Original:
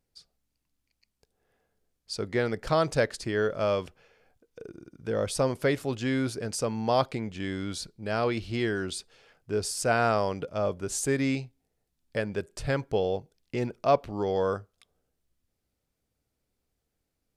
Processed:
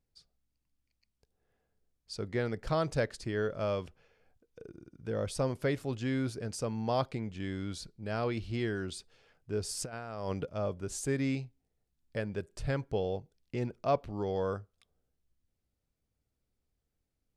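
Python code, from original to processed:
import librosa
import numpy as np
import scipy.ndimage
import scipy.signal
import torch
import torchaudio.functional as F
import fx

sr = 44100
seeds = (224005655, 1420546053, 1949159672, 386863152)

y = fx.low_shelf(x, sr, hz=180.0, db=7.5)
y = fx.over_compress(y, sr, threshold_db=-28.0, ratio=-0.5, at=(9.68, 10.45), fade=0.02)
y = fx.high_shelf(y, sr, hz=12000.0, db=-5.0)
y = y * librosa.db_to_amplitude(-7.0)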